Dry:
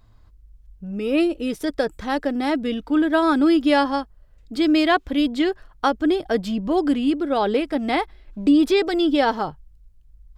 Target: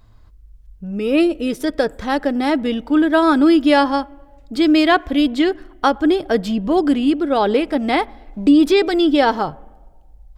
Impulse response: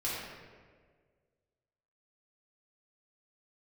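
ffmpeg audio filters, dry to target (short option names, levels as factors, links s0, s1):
-filter_complex "[0:a]asplit=2[s0][s1];[1:a]atrim=start_sample=2205,asetrate=57330,aresample=44100,lowpass=2400[s2];[s1][s2]afir=irnorm=-1:irlink=0,volume=0.0562[s3];[s0][s3]amix=inputs=2:normalize=0,volume=1.58"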